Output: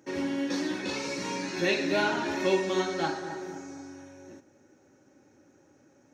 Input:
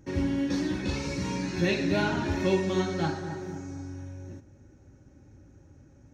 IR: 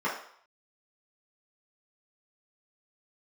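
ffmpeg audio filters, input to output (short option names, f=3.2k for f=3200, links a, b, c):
-af "highpass=340,volume=2.5dB"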